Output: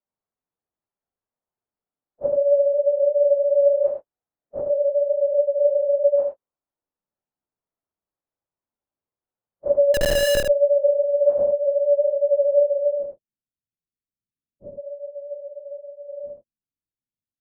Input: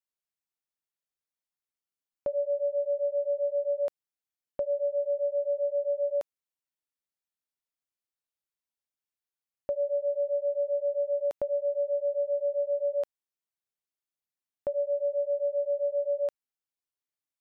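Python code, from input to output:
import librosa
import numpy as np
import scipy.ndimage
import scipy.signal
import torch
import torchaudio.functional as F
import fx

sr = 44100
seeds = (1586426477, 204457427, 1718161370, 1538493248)

p1 = fx.phase_scramble(x, sr, seeds[0], window_ms=100)
p2 = fx.filter_sweep_lowpass(p1, sr, from_hz=880.0, to_hz=220.0, start_s=12.64, end_s=13.2, q=0.85)
p3 = fx.schmitt(p2, sr, flips_db=-30.0, at=(9.94, 10.44))
p4 = p3 + fx.echo_single(p3, sr, ms=76, db=-5.5, dry=0)
y = p4 * librosa.db_to_amplitude(9.0)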